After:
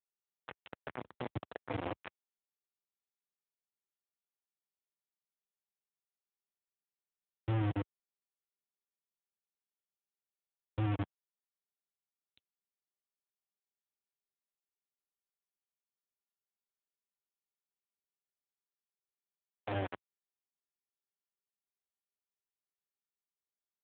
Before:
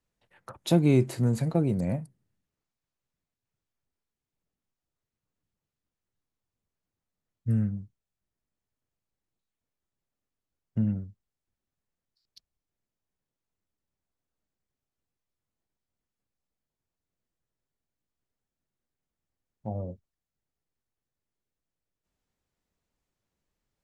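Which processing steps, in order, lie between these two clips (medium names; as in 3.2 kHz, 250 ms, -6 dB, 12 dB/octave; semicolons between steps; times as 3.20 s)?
elliptic band-stop 100–560 Hz, stop band 70 dB; bass shelf 88 Hz +6.5 dB; hum notches 60/120/180/240/300/360 Hz; thinning echo 151 ms, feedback 27%, high-pass 190 Hz, level -5.5 dB; compression 6:1, threshold -36 dBFS, peak gain reduction 9.5 dB; low-pass that closes with the level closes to 440 Hz, closed at -36 dBFS; bit crusher 6-bit; trim +3.5 dB; AMR-NB 7.95 kbps 8 kHz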